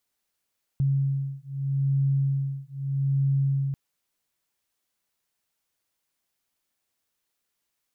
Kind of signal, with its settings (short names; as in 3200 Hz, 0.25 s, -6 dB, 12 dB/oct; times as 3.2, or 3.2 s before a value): beating tones 137 Hz, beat 0.8 Hz, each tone -25.5 dBFS 2.94 s